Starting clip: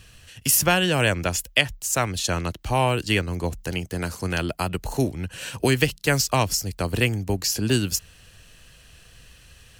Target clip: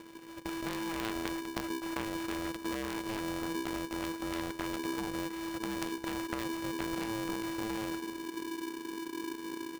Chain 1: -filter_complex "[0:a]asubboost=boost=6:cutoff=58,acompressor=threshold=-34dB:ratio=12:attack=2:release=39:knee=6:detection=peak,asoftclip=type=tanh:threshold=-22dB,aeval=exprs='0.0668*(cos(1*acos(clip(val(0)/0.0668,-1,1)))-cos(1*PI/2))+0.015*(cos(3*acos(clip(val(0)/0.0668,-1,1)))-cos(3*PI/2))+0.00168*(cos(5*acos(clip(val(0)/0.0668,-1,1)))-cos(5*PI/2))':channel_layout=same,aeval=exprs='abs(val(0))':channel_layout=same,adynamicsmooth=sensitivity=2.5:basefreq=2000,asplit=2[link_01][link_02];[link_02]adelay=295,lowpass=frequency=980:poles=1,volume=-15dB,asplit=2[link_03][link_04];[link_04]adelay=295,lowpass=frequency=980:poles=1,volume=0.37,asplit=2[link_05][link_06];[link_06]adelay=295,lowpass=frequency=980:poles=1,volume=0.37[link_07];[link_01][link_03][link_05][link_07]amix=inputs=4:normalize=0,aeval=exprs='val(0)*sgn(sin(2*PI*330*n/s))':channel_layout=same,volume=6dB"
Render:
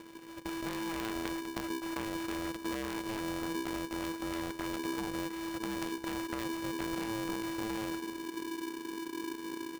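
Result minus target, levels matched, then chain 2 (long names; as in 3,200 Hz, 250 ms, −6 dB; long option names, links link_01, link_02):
soft clipping: distortion +19 dB
-filter_complex "[0:a]asubboost=boost=6:cutoff=58,acompressor=threshold=-34dB:ratio=12:attack=2:release=39:knee=6:detection=peak,asoftclip=type=tanh:threshold=-12dB,aeval=exprs='0.0668*(cos(1*acos(clip(val(0)/0.0668,-1,1)))-cos(1*PI/2))+0.015*(cos(3*acos(clip(val(0)/0.0668,-1,1)))-cos(3*PI/2))+0.00168*(cos(5*acos(clip(val(0)/0.0668,-1,1)))-cos(5*PI/2))':channel_layout=same,aeval=exprs='abs(val(0))':channel_layout=same,adynamicsmooth=sensitivity=2.5:basefreq=2000,asplit=2[link_01][link_02];[link_02]adelay=295,lowpass=frequency=980:poles=1,volume=-15dB,asplit=2[link_03][link_04];[link_04]adelay=295,lowpass=frequency=980:poles=1,volume=0.37,asplit=2[link_05][link_06];[link_06]adelay=295,lowpass=frequency=980:poles=1,volume=0.37[link_07];[link_01][link_03][link_05][link_07]amix=inputs=4:normalize=0,aeval=exprs='val(0)*sgn(sin(2*PI*330*n/s))':channel_layout=same,volume=6dB"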